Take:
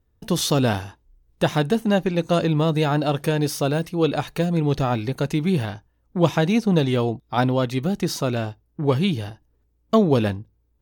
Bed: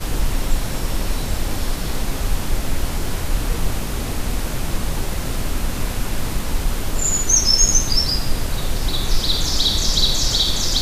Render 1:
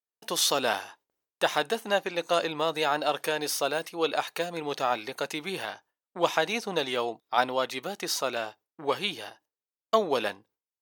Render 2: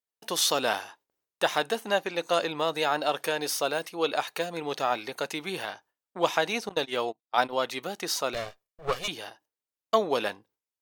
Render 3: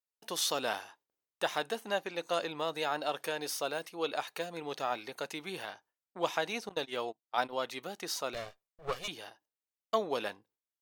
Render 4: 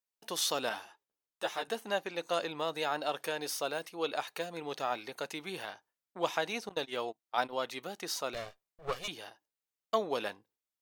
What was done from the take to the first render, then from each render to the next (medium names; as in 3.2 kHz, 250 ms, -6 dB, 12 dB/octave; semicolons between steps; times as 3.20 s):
gate with hold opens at -48 dBFS; high-pass 650 Hz 12 dB/octave
6.69–7.53 s: gate -33 dBFS, range -25 dB; 8.34–9.08 s: comb filter that takes the minimum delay 1.7 ms
trim -7 dB
0.69–1.68 s: three-phase chorus